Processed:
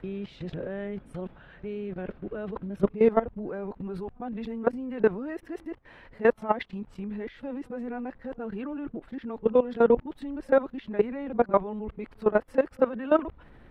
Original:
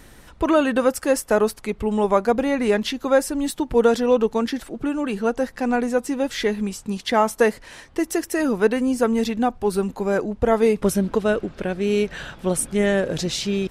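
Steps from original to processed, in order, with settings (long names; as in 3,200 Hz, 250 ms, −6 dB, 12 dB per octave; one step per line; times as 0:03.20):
played backwards from end to start
high-frequency loss of the air 490 metres
output level in coarse steps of 17 dB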